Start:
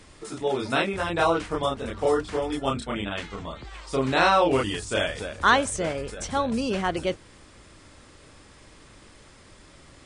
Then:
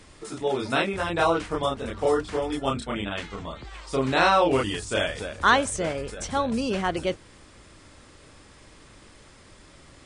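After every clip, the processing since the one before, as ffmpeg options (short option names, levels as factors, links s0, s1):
-af anull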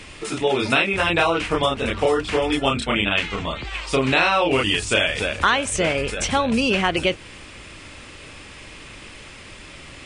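-af "equalizer=f=2600:t=o:w=0.75:g=11,acompressor=threshold=0.0631:ratio=4,volume=2.51"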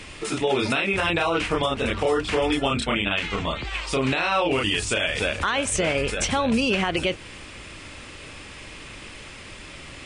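-af "alimiter=limit=0.224:level=0:latency=1:release=61"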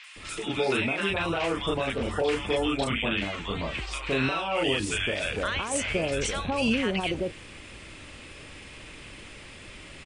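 -filter_complex "[0:a]acrossover=split=1100|5600[s0][s1][s2];[s2]adelay=40[s3];[s0]adelay=160[s4];[s4][s1][s3]amix=inputs=3:normalize=0,volume=0.668"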